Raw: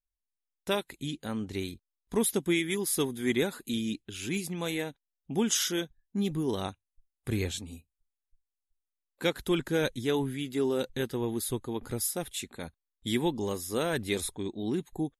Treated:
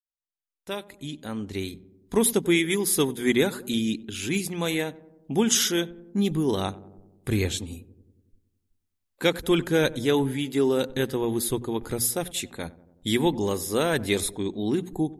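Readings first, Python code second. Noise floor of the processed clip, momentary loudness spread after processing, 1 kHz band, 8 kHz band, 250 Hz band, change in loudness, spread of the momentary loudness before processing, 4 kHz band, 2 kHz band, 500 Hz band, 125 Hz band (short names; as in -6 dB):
-80 dBFS, 13 LU, +5.5 dB, +6.0 dB, +5.5 dB, +6.0 dB, 10 LU, +5.5 dB, +6.0 dB, +6.0 dB, +5.5 dB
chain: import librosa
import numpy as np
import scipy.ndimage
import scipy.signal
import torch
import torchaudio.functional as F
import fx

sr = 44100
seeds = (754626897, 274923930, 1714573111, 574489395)

p1 = fx.fade_in_head(x, sr, length_s=2.19)
p2 = fx.hum_notches(p1, sr, base_hz=60, count=4)
p3 = p2 + fx.echo_filtered(p2, sr, ms=93, feedback_pct=68, hz=990.0, wet_db=-18, dry=0)
y = p3 * librosa.db_to_amplitude(6.0)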